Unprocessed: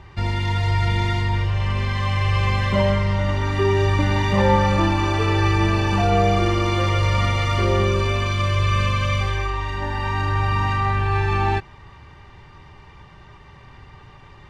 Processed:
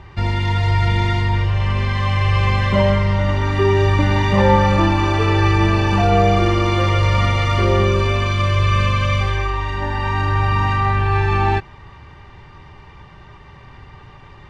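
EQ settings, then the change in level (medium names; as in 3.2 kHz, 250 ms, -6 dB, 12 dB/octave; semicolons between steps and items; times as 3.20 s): treble shelf 6.9 kHz -7.5 dB; +3.5 dB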